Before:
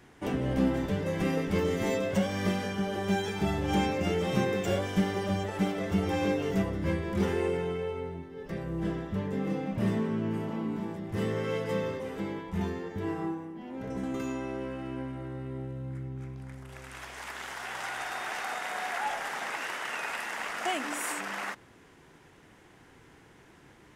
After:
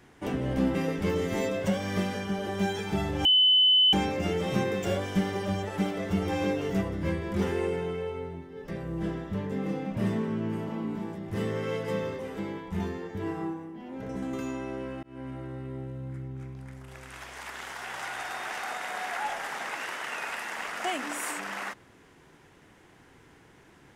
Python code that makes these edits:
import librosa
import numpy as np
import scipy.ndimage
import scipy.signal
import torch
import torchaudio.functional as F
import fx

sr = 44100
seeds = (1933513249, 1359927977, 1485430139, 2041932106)

y = fx.edit(x, sr, fx.cut(start_s=0.75, length_s=0.49),
    fx.insert_tone(at_s=3.74, length_s=0.68, hz=3020.0, db=-17.0),
    fx.fade_in_span(start_s=14.84, length_s=0.27), tone=tone)